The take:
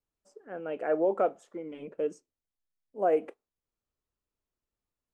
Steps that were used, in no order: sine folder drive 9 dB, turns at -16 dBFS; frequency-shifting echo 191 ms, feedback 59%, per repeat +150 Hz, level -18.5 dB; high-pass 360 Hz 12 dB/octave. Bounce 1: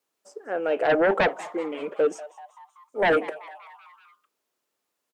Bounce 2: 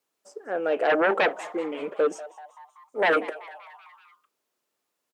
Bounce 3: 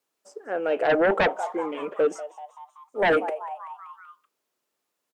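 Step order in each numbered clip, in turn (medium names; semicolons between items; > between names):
high-pass > sine folder > frequency-shifting echo; sine folder > frequency-shifting echo > high-pass; frequency-shifting echo > high-pass > sine folder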